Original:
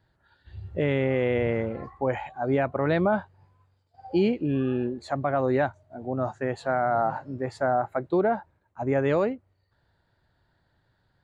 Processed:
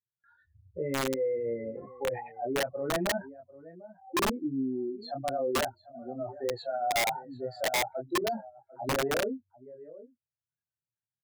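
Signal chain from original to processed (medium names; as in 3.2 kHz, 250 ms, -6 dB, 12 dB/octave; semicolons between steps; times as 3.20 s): spectral contrast enhancement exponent 2.8; high-order bell 2.5 kHz +8 dB; gate with hold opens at -56 dBFS; on a send: delay 746 ms -18.5 dB; on the sum: chorus voices 2, 0.23 Hz, delay 24 ms, depth 1.8 ms; high-pass 180 Hz 12 dB/octave; integer overflow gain 20.5 dB; trim -2 dB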